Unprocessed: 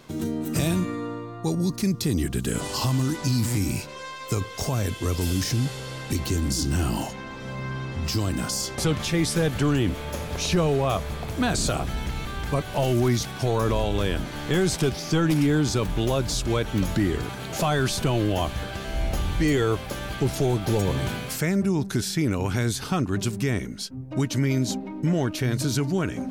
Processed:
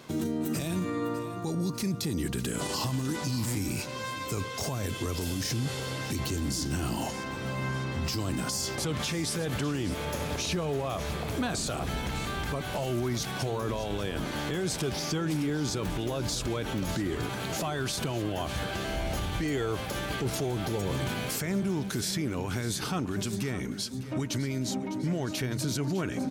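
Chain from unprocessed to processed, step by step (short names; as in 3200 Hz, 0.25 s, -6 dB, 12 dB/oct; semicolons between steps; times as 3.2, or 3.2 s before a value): HPF 100 Hz 6 dB/oct; limiter -23.5 dBFS, peak gain reduction 11 dB; feedback echo 0.604 s, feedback 52%, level -14 dB; gain +1 dB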